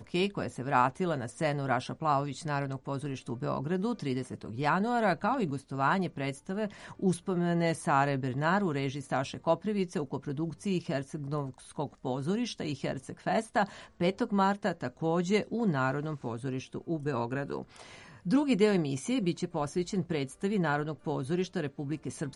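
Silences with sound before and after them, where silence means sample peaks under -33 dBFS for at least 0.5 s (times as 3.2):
17.62–18.26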